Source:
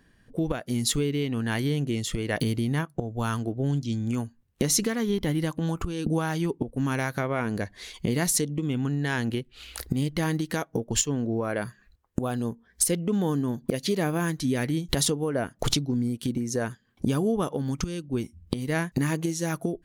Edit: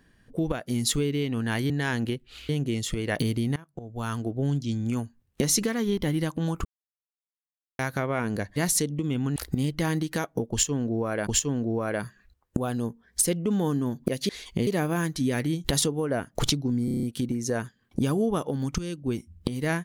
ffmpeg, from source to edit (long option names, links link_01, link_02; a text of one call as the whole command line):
ffmpeg -i in.wav -filter_complex "[0:a]asplit=17[link_01][link_02][link_03][link_04][link_05][link_06][link_07][link_08][link_09][link_10][link_11][link_12][link_13][link_14][link_15][link_16][link_17];[link_01]atrim=end=1.702[link_18];[link_02]atrim=start=8.948:end=9.742[link_19];[link_03]atrim=start=1.698:end=2.77,asetpts=PTS-STARTPTS,afade=type=out:start_time=1.068:duration=0.004:curve=hsin:silence=0.0668344[link_20];[link_04]atrim=start=2.77:end=5.86,asetpts=PTS-STARTPTS,afade=type=in:duration=0.75:silence=0.0668344,afade=type=out:start_time=3.086:duration=0.004:curve=hsin[link_21];[link_05]atrim=start=5.86:end=7,asetpts=PTS-STARTPTS,volume=0[link_22];[link_06]atrim=start=7:end=7.772,asetpts=PTS-STARTPTS,afade=type=in:duration=0.004:curve=hsin[link_23];[link_07]atrim=start=8.148:end=8.952[link_24];[link_08]atrim=start=9.738:end=11.652[link_25];[link_09]atrim=start=10.888:end=13.912[link_26];[link_10]atrim=start=7.768:end=8.152[link_27];[link_11]atrim=start=13.908:end=16.122[link_28];[link_12]atrim=start=16.088:end=16.122[link_29];[link_13]atrim=start=16.088:end=16.122[link_30];[link_14]atrim=start=16.088:end=16.122[link_31];[link_15]atrim=start=16.088:end=16.122[link_32];[link_16]atrim=start=16.088:end=16.122[link_33];[link_17]atrim=start=16.088[link_34];[link_18][link_19]acrossfade=duration=0.004:curve1=hsin:curve2=hsin[link_35];[link_20][link_21][link_22][link_23]concat=n=4:v=0:a=1[link_36];[link_35][link_36]acrossfade=duration=0.004:curve1=hsin:curve2=hsin[link_37];[link_37][link_24]acrossfade=duration=0.004:curve1=hsin:curve2=hsin[link_38];[link_38][link_25]acrossfade=duration=0.004:curve1=hsin:curve2=hsin[link_39];[link_39][link_26]acrossfade=duration=0.004:curve1=hsin:curve2=hsin[link_40];[link_40][link_27]acrossfade=duration=0.004:curve1=hsin:curve2=hsin[link_41];[link_41][link_28]acrossfade=duration=0.004:curve1=hsin:curve2=hsin[link_42];[link_42][link_29]acrossfade=duration=0.004:curve1=hsin:curve2=hsin[link_43];[link_43][link_30]acrossfade=duration=0.004:curve1=hsin:curve2=hsin[link_44];[link_44][link_31]acrossfade=duration=0.004:curve1=hsin:curve2=hsin[link_45];[link_45][link_32]acrossfade=duration=0.004:curve1=hsin:curve2=hsin[link_46];[link_46][link_33]acrossfade=duration=0.004:curve1=hsin:curve2=hsin[link_47];[link_47][link_34]acrossfade=duration=0.004:curve1=hsin:curve2=hsin" out.wav